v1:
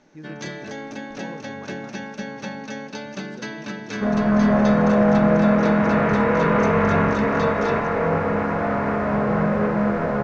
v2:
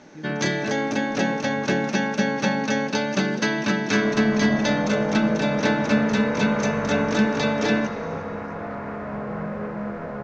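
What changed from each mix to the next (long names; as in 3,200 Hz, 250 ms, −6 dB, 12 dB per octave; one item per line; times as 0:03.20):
first sound +9.5 dB
second sound −9.5 dB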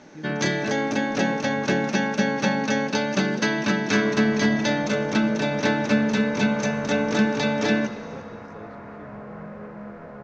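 second sound −8.0 dB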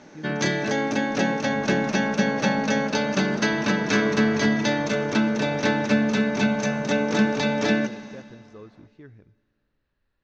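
second sound: entry −2.60 s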